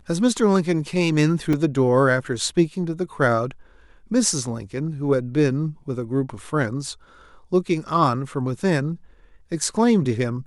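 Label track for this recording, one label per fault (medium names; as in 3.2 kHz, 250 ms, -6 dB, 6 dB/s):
1.530000	1.530000	dropout 4.3 ms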